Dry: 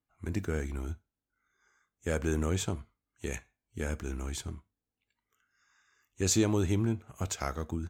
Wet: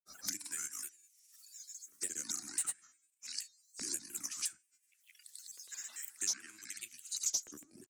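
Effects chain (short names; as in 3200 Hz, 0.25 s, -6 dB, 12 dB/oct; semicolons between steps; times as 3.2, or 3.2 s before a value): trilling pitch shifter -7.5 st, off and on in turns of 0.129 s; de-hum 303 Hz, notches 29; random-step tremolo 1.3 Hz; EQ curve 330 Hz 0 dB, 490 Hz -27 dB, 2700 Hz -21 dB, 7400 Hz +12 dB; LFO high-pass saw up 0.53 Hz 430–6700 Hz; band shelf 2000 Hz +13.5 dB 1.3 oct; grains, grains 20/s, pitch spread up and down by 3 st; three-band squash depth 100%; gain +1 dB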